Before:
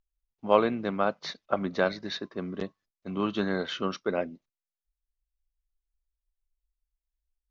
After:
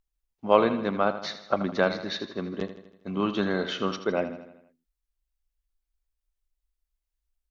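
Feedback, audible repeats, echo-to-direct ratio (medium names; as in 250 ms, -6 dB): 55%, 5, -10.5 dB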